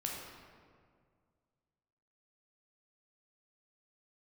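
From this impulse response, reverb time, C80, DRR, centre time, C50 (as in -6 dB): 2.0 s, 2.5 dB, -2.0 dB, 84 ms, 1.0 dB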